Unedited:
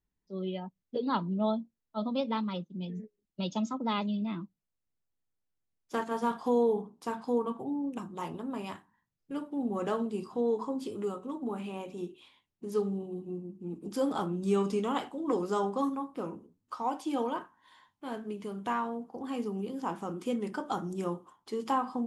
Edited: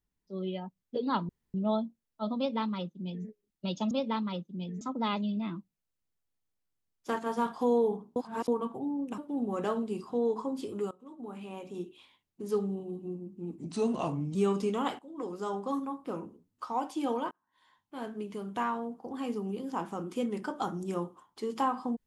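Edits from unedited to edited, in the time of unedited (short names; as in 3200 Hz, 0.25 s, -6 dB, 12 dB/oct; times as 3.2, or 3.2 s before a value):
1.29 insert room tone 0.25 s
2.12–3.02 copy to 3.66
7.01–7.33 reverse
8.03–9.41 cut
11.14–12.07 fade in linear, from -20 dB
13.81–14.45 speed 83%
15.09–16.17 fade in, from -13 dB
17.41–18.2 fade in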